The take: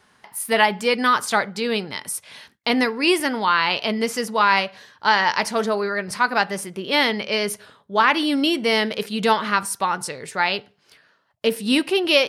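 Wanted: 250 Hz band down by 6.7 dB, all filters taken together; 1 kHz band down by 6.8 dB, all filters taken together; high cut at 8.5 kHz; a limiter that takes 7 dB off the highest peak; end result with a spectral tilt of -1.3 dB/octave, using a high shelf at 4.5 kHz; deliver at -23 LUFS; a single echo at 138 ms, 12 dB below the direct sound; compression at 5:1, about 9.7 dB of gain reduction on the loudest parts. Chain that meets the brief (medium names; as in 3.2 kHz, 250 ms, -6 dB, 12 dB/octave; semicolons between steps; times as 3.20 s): low-pass 8.5 kHz; peaking EQ 250 Hz -8 dB; peaking EQ 1 kHz -8.5 dB; treble shelf 4.5 kHz +8 dB; compression 5:1, threshold -22 dBFS; peak limiter -15 dBFS; delay 138 ms -12 dB; trim +4.5 dB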